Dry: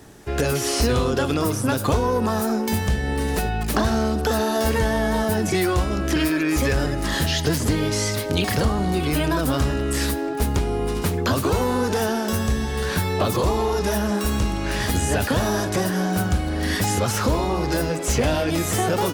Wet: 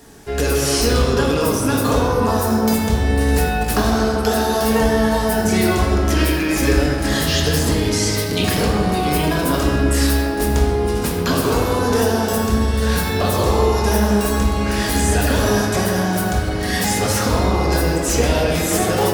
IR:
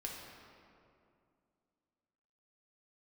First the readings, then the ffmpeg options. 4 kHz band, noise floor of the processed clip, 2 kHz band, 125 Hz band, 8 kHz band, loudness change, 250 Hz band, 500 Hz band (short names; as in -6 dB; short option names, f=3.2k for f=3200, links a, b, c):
+4.5 dB, -21 dBFS, +4.0 dB, +4.0 dB, +5.0 dB, +4.5 dB, +4.5 dB, +4.5 dB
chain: -filter_complex "[0:a]bass=f=250:g=-2,treble=f=4k:g=4[a];[1:a]atrim=start_sample=2205[b];[a][b]afir=irnorm=-1:irlink=0,volume=4.5dB"